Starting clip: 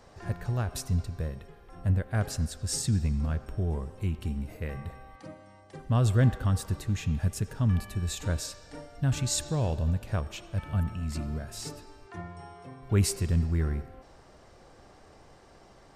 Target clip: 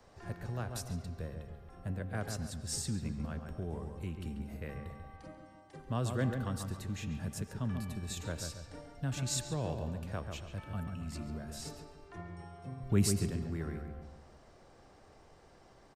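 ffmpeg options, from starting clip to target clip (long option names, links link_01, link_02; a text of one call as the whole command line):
ffmpeg -i in.wav -filter_complex "[0:a]asettb=1/sr,asplit=3[link_01][link_02][link_03];[link_01]atrim=end=12.634[link_04];[link_02]atrim=start=12.63:end=13.3,asetpts=PTS-STARTPTS,afade=type=in:duration=0.004:curve=qsin,afade=type=out:start_time=0.666:duration=0.004:curve=qsin,bass=frequency=250:gain=12,treble=frequency=4000:gain=3[link_05];[link_03]atrim=start=13.296[link_06];[link_04][link_05]acrossfade=duration=0.004:curve1=hsin:curve2=qsin[link_07];[link_07][link_06]acrossfade=duration=0.004:curve1=qsin:curve2=hsin,asplit=2[link_08][link_09];[link_09]adelay=139,lowpass=frequency=2100:poles=1,volume=-6dB,asplit=2[link_10][link_11];[link_11]adelay=139,lowpass=frequency=2100:poles=1,volume=0.43,asplit=2[link_12][link_13];[link_13]adelay=139,lowpass=frequency=2100:poles=1,volume=0.43,asplit=2[link_14][link_15];[link_15]adelay=139,lowpass=frequency=2100:poles=1,volume=0.43,asplit=2[link_16][link_17];[link_17]adelay=139,lowpass=frequency=2100:poles=1,volume=0.43[link_18];[link_08][link_10][link_12][link_14][link_16][link_18]amix=inputs=6:normalize=0,acrossover=split=150|420|6000[link_19][link_20][link_21][link_22];[link_19]acompressor=threshold=-36dB:ratio=6[link_23];[link_23][link_20][link_21][link_22]amix=inputs=4:normalize=0,volume=-6dB" out.wav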